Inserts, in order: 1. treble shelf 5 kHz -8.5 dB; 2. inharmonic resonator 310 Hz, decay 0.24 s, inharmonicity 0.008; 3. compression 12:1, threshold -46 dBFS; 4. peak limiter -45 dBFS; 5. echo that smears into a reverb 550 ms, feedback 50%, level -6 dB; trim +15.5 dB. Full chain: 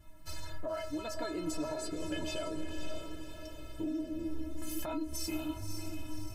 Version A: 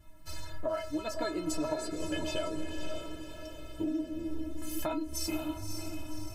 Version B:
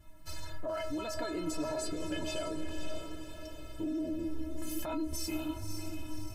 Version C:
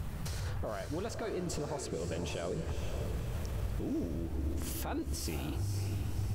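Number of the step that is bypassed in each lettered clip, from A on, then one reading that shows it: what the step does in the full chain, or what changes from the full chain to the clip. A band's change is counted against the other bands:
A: 4, crest factor change +3.0 dB; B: 3, mean gain reduction 5.0 dB; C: 2, 125 Hz band +11.5 dB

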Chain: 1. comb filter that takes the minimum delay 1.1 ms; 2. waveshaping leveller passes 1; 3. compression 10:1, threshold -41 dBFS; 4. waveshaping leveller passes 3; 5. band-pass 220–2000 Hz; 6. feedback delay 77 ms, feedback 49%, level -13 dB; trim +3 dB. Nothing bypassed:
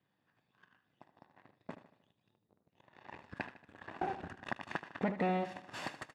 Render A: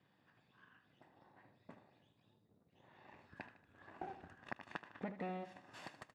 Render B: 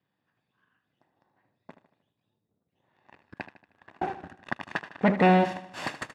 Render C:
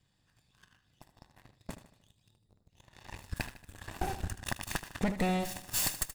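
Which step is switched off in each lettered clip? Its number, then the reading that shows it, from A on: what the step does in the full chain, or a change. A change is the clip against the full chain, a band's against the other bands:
4, crest factor change +6.0 dB; 3, mean gain reduction 5.0 dB; 5, 4 kHz band +9.0 dB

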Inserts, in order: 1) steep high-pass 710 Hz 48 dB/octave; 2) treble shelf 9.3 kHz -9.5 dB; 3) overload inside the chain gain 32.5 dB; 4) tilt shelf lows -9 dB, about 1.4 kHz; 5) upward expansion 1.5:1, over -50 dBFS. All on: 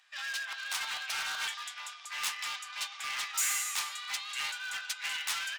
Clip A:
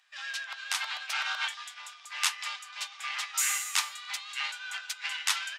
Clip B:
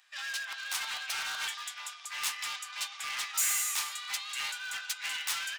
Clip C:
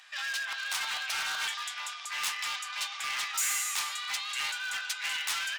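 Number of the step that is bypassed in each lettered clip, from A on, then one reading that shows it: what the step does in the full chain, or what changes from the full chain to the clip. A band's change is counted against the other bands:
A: 3, distortion -9 dB; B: 2, 8 kHz band +2.5 dB; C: 5, momentary loudness spread change -2 LU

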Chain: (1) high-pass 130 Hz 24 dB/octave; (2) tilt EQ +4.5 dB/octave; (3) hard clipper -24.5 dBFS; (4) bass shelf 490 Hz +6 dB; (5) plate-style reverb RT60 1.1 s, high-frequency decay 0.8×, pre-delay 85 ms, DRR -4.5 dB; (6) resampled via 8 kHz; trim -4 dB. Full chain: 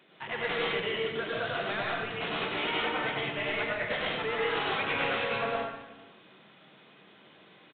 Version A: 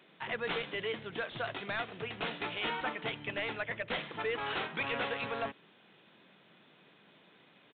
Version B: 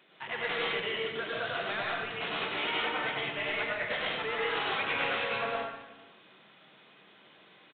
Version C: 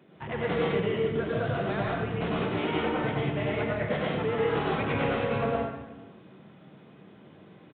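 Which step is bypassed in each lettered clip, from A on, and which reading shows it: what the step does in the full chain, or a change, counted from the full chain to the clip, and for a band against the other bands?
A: 5, loudness change -5.5 LU; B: 4, 125 Hz band -4.5 dB; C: 2, 125 Hz band +12.0 dB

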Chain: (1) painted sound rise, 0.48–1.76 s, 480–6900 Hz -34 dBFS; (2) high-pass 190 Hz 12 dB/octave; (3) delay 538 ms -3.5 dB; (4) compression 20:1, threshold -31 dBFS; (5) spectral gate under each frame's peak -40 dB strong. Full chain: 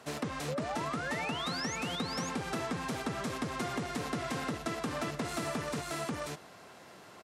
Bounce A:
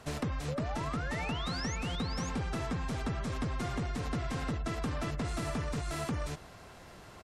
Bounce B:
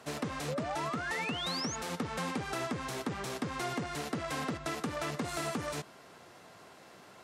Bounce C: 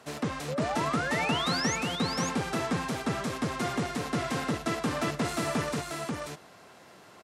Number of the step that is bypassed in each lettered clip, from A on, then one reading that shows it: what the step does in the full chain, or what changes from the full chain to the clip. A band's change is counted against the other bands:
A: 2, 125 Hz band +8.5 dB; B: 3, momentary loudness spread change +14 LU; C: 4, mean gain reduction 3.5 dB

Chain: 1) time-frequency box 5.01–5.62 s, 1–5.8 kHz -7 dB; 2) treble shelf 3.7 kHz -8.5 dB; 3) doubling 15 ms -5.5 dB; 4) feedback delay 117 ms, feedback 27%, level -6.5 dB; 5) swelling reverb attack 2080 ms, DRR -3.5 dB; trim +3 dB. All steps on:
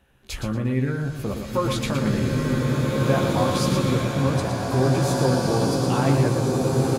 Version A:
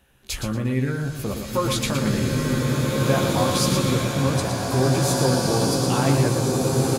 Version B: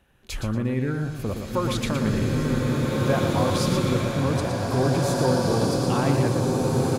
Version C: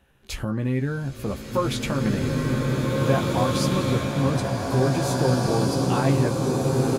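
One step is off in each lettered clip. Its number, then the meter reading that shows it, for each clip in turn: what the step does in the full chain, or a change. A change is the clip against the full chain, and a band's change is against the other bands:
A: 2, 8 kHz band +6.5 dB; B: 3, loudness change -1.0 LU; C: 4, loudness change -1.0 LU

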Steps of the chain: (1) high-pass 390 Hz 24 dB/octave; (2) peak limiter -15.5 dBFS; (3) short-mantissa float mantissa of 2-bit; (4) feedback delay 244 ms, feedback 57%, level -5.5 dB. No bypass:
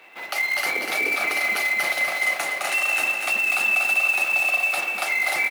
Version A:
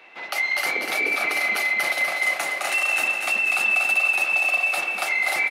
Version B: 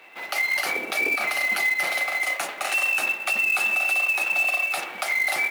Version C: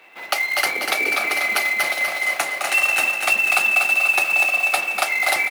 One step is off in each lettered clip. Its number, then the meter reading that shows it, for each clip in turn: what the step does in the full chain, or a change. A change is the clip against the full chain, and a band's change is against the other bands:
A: 3, distortion -20 dB; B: 4, echo-to-direct -4.0 dB to none; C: 2, mean gain reduction 1.5 dB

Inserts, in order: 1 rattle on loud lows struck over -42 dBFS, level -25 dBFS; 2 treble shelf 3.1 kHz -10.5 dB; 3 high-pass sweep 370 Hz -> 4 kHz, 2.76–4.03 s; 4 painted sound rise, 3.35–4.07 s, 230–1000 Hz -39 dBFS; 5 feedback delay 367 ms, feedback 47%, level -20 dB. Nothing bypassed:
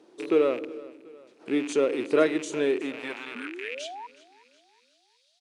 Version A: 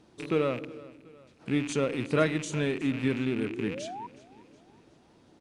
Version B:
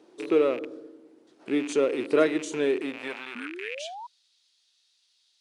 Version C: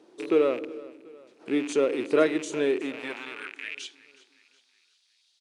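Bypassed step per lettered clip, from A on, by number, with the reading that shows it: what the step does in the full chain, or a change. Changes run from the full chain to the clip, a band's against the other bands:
3, 125 Hz band +16.5 dB; 5, echo-to-direct -19.0 dB to none; 4, momentary loudness spread change -2 LU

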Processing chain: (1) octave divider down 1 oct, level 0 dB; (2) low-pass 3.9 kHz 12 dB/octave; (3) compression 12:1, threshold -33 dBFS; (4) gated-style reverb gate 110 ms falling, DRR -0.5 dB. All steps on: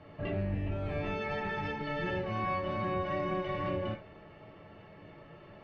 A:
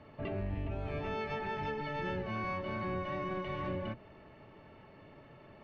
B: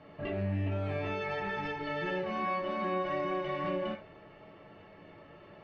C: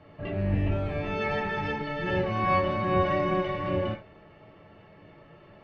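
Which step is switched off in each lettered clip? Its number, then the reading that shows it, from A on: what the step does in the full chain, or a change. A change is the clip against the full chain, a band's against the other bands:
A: 4, loudness change -3.0 LU; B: 1, 125 Hz band -2.0 dB; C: 3, mean gain reduction 4.0 dB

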